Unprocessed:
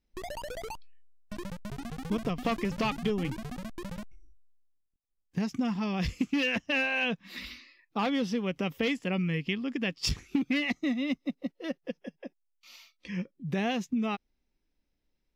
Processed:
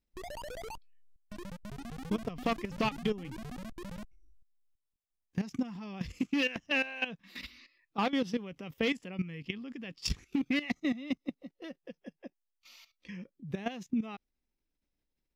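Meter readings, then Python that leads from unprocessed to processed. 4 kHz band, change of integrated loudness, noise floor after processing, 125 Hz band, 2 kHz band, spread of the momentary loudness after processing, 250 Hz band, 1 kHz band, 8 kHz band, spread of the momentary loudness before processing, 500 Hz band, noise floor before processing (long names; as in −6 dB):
−4.0 dB, −3.5 dB, −84 dBFS, −6.0 dB, −4.0 dB, 17 LU, −4.0 dB, −3.0 dB, −4.0 dB, 14 LU, −4.0 dB, −79 dBFS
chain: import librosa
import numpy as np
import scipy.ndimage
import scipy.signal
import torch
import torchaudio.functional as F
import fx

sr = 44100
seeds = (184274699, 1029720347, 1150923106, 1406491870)

y = fx.level_steps(x, sr, step_db=14)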